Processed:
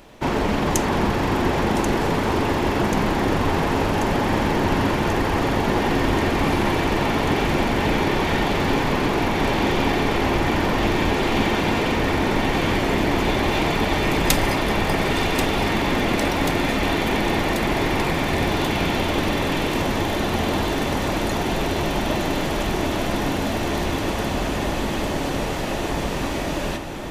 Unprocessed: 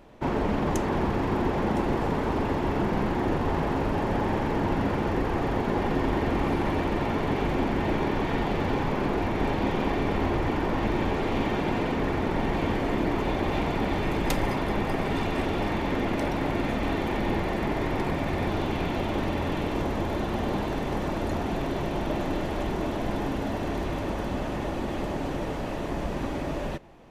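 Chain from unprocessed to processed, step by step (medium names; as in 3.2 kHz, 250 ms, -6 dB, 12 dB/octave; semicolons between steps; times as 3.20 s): treble shelf 2.3 kHz +11.5 dB; on a send: echo whose repeats swap between lows and highs 543 ms, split 1.9 kHz, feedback 85%, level -9 dB; on the sum: trim +4 dB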